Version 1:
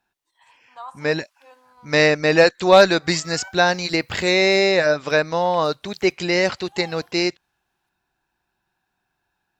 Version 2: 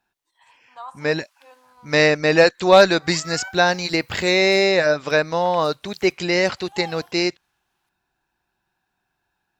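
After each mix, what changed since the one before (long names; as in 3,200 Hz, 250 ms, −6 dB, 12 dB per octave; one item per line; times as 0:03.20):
background +5.0 dB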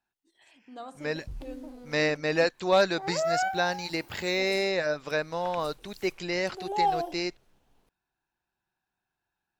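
first voice: remove high-pass with resonance 980 Hz, resonance Q 8.3
second voice −10.5 dB
background: remove Butterworth high-pass 980 Hz 36 dB per octave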